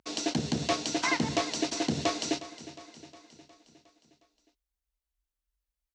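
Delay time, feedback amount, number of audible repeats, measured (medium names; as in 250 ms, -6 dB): 360 ms, 58%, 5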